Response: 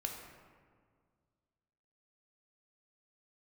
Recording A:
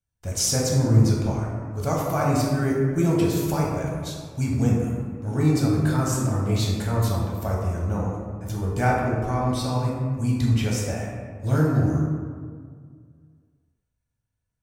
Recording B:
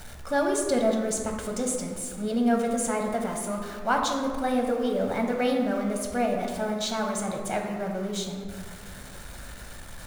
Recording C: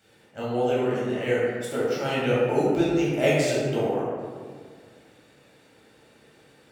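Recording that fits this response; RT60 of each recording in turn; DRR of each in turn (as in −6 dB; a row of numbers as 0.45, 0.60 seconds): B; 1.9, 1.9, 1.9 seconds; −4.0, 1.5, −8.5 decibels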